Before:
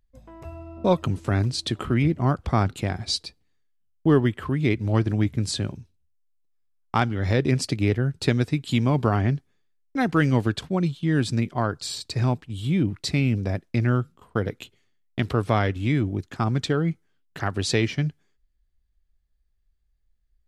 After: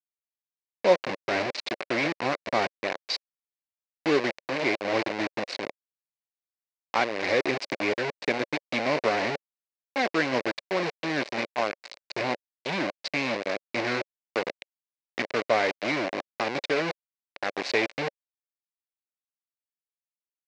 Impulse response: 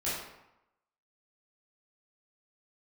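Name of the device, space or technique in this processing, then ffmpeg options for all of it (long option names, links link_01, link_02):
hand-held game console: -af "acrusher=bits=3:mix=0:aa=0.000001,highpass=440,equalizer=frequency=560:width_type=q:width=4:gain=5,equalizer=frequency=890:width_type=q:width=4:gain=-3,equalizer=frequency=1300:width_type=q:width=4:gain=-7,equalizer=frequency=2200:width_type=q:width=4:gain=4,equalizer=frequency=3300:width_type=q:width=4:gain=-7,lowpass=frequency=4600:width=0.5412,lowpass=frequency=4600:width=1.3066"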